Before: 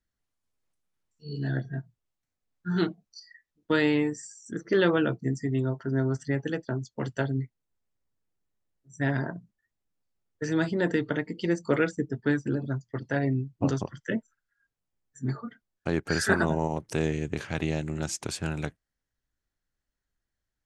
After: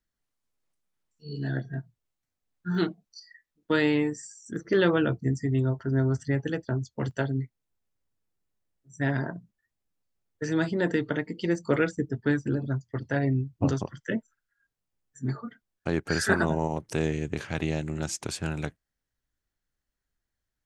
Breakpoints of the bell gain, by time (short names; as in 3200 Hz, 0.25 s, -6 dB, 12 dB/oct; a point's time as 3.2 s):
bell 83 Hz 0.74 oct
-5.5 dB
from 1.74 s +0.5 dB
from 2.75 s -6 dB
from 3.74 s +3 dB
from 4.56 s +13 dB
from 7.11 s +1 dB
from 11.55 s +9 dB
from 13.73 s +0.5 dB